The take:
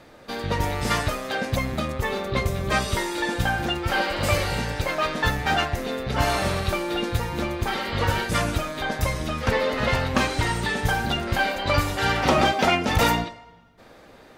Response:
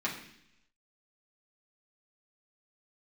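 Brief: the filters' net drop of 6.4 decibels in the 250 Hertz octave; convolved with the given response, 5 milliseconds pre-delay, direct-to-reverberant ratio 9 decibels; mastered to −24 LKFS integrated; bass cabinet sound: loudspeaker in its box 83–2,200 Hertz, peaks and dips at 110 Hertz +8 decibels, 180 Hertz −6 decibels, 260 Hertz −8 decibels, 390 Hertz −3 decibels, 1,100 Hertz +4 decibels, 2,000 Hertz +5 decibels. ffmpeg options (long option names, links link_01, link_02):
-filter_complex "[0:a]equalizer=frequency=250:width_type=o:gain=-3,asplit=2[link_01][link_02];[1:a]atrim=start_sample=2205,adelay=5[link_03];[link_02][link_03]afir=irnorm=-1:irlink=0,volume=-15.5dB[link_04];[link_01][link_04]amix=inputs=2:normalize=0,highpass=frequency=83:width=0.5412,highpass=frequency=83:width=1.3066,equalizer=frequency=110:width_type=q:width=4:gain=8,equalizer=frequency=180:width_type=q:width=4:gain=-6,equalizer=frequency=260:width_type=q:width=4:gain=-8,equalizer=frequency=390:width_type=q:width=4:gain=-3,equalizer=frequency=1100:width_type=q:width=4:gain=4,equalizer=frequency=2000:width_type=q:width=4:gain=5,lowpass=frequency=2200:width=0.5412,lowpass=frequency=2200:width=1.3066"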